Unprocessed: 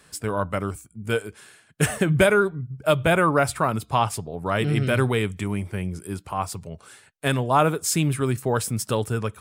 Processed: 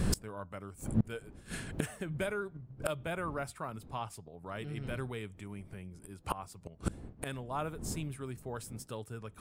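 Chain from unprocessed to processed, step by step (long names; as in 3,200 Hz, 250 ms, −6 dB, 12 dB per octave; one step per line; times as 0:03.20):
wind on the microphone 190 Hz −34 dBFS
gate with flip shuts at −26 dBFS, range −28 dB
level +10 dB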